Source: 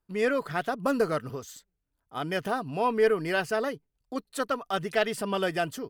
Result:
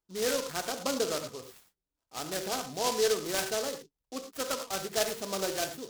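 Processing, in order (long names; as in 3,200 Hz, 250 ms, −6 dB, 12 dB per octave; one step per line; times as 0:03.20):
bass and treble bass −8 dB, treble −5 dB
reverb whose tail is shaped and stops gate 130 ms flat, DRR 5 dB
short delay modulated by noise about 4,800 Hz, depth 0.12 ms
level −4.5 dB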